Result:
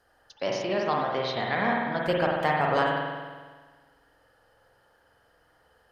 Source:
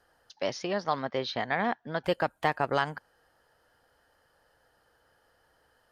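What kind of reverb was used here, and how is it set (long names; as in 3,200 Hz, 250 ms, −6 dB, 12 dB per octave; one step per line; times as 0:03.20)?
spring reverb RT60 1.5 s, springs 47 ms, chirp 65 ms, DRR −2 dB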